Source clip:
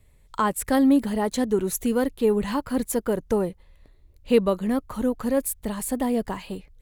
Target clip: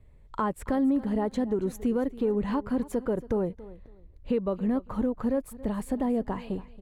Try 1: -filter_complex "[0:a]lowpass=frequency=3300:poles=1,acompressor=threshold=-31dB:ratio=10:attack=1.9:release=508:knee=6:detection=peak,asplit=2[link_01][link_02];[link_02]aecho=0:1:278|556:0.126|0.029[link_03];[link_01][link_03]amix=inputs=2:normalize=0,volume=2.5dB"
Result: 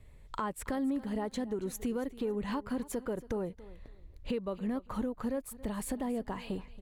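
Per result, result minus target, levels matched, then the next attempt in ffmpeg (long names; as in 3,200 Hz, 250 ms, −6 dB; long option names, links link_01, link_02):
4,000 Hz band +9.0 dB; downward compressor: peak gain reduction +8.5 dB
-filter_complex "[0:a]lowpass=frequency=960:poles=1,acompressor=threshold=-31dB:ratio=10:attack=1.9:release=508:knee=6:detection=peak,asplit=2[link_01][link_02];[link_02]aecho=0:1:278|556:0.126|0.029[link_03];[link_01][link_03]amix=inputs=2:normalize=0,volume=2.5dB"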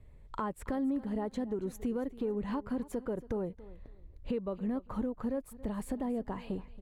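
downward compressor: peak gain reduction +7.5 dB
-filter_complex "[0:a]lowpass=frequency=960:poles=1,acompressor=threshold=-22.5dB:ratio=10:attack=1.9:release=508:knee=6:detection=peak,asplit=2[link_01][link_02];[link_02]aecho=0:1:278|556:0.126|0.029[link_03];[link_01][link_03]amix=inputs=2:normalize=0,volume=2.5dB"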